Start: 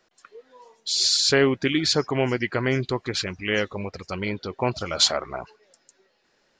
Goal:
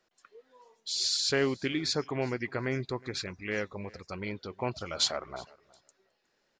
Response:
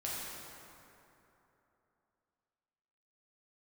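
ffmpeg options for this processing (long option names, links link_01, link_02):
-filter_complex "[0:a]asettb=1/sr,asplit=3[link_01][link_02][link_03];[link_01]atrim=end=1.744[link_04];[link_02]atrim=start=1.74:end=4.26,asetpts=PTS-STARTPTS,afade=type=in:duration=0.004:curve=qsin,afade=type=out:start_time=2.516:duration=0.004:curve=qsin,bandreject=frequency=3000:width=5[link_05];[link_03]atrim=start=4.256[link_06];[link_04][link_05]acrossfade=duration=0.004:curve1=hsin:curve2=qsin[link_07];[link_07][link_06]acrossfade=duration=0.004:curve1=qsin:curve2=hsin,aecho=1:1:364|728:0.0668|0.0107,volume=-8.5dB"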